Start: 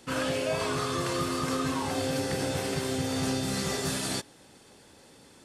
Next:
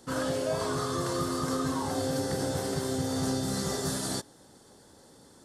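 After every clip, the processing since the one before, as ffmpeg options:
-af "equalizer=f=2500:w=2.3:g=-15"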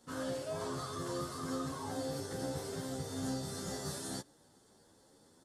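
-filter_complex "[0:a]asplit=2[s0][s1];[s1]adelay=10.6,afreqshift=2.3[s2];[s0][s2]amix=inputs=2:normalize=1,volume=0.501"

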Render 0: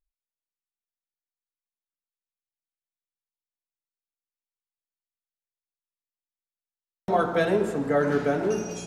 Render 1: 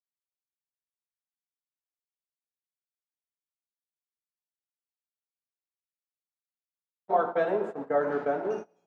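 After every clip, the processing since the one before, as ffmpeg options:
-af "agate=range=0.0398:threshold=0.0447:ratio=16:detection=peak,bandpass=f=770:t=q:w=1.1:csg=0"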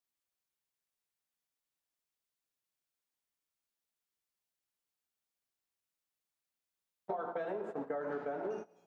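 -af "alimiter=limit=0.075:level=0:latency=1:release=157,acompressor=threshold=0.00891:ratio=5,volume=1.68"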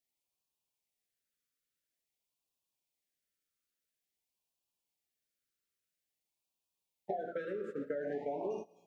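-af "afftfilt=real='re*(1-between(b*sr/1024,810*pow(1700/810,0.5+0.5*sin(2*PI*0.49*pts/sr))/1.41,810*pow(1700/810,0.5+0.5*sin(2*PI*0.49*pts/sr))*1.41))':imag='im*(1-between(b*sr/1024,810*pow(1700/810,0.5+0.5*sin(2*PI*0.49*pts/sr))/1.41,810*pow(1700/810,0.5+0.5*sin(2*PI*0.49*pts/sr))*1.41))':win_size=1024:overlap=0.75,volume=1.12"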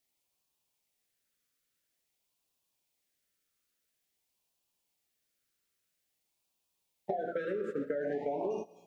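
-af "acompressor=threshold=0.0112:ratio=2.5,volume=2.24"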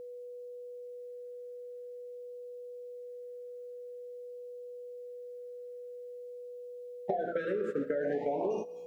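-af "aeval=exprs='val(0)+0.00631*sin(2*PI*490*n/s)':c=same,volume=1.26"

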